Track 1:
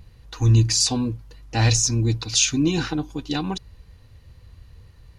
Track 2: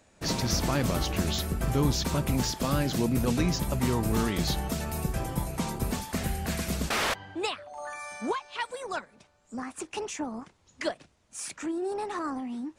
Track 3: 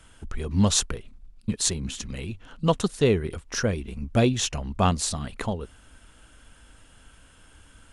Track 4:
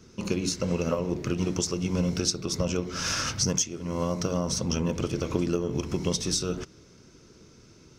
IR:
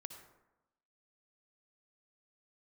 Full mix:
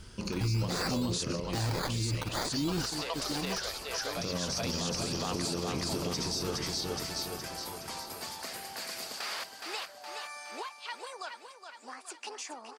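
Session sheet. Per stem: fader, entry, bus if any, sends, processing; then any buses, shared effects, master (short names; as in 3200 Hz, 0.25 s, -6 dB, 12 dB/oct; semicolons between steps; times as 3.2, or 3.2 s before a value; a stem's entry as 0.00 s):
-1.5 dB, 0.00 s, no bus, no send, no echo send, decimation with a swept rate 14×, swing 60% 0.59 Hz; random-step tremolo, depth 85%
-4.0 dB, 2.30 s, bus A, no send, echo send -10.5 dB, HPF 610 Hz 12 dB/oct
-1.5 dB, 0.00 s, bus A, no send, echo send -5 dB, HPF 630 Hz 24 dB/oct
-4.5 dB, 0.00 s, muted 1.4–4.17, no bus, no send, echo send -4.5 dB, dry
bus A: 0.0 dB, compressor 3:1, threshold -38 dBFS, peak gain reduction 13.5 dB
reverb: off
echo: feedback echo 0.417 s, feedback 53%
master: bell 4700 Hz +11 dB 0.29 oct; limiter -23.5 dBFS, peak gain reduction 15.5 dB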